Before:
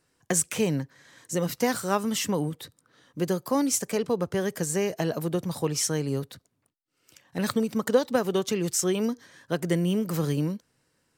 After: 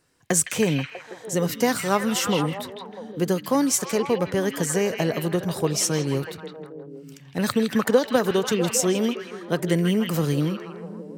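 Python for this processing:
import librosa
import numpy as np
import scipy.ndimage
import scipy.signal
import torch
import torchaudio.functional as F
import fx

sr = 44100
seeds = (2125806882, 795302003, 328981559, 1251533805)

y = fx.echo_stepped(x, sr, ms=161, hz=2800.0, octaves=-0.7, feedback_pct=70, wet_db=-1.0)
y = fx.band_squash(y, sr, depth_pct=40, at=(7.71, 8.31))
y = F.gain(torch.from_numpy(y), 3.5).numpy()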